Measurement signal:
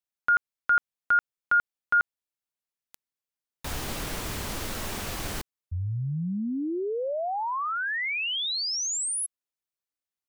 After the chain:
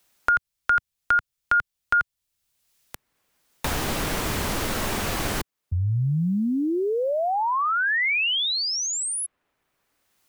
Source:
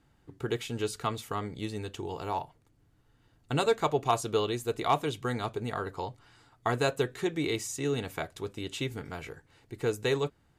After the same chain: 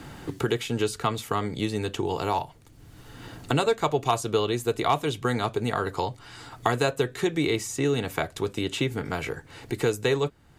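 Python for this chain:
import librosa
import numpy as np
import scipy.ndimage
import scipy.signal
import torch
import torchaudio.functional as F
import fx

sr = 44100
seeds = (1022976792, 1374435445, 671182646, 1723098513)

y = fx.band_squash(x, sr, depth_pct=70)
y = y * librosa.db_to_amplitude(5.0)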